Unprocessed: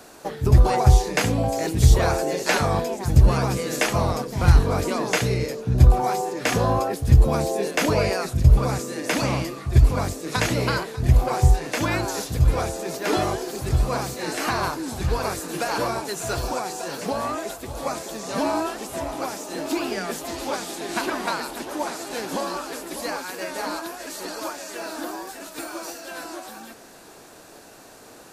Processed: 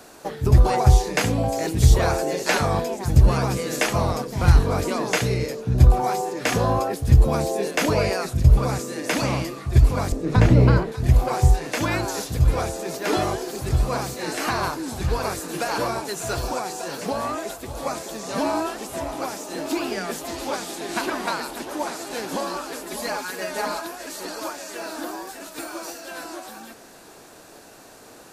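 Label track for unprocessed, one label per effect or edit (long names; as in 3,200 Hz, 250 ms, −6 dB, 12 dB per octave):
10.120000	10.920000	spectral tilt −4 dB per octave
22.860000	23.850000	comb filter 4.8 ms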